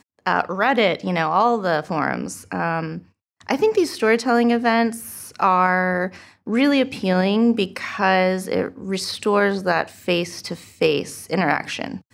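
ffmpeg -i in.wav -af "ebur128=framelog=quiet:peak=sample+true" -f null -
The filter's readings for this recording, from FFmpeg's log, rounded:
Integrated loudness:
  I:         -20.4 LUFS
  Threshold: -30.8 LUFS
Loudness range:
  LRA:         2.5 LU
  Threshold: -40.6 LUFS
  LRA low:   -22.1 LUFS
  LRA high:  -19.6 LUFS
Sample peak:
  Peak:       -3.7 dBFS
True peak:
  Peak:       -3.7 dBFS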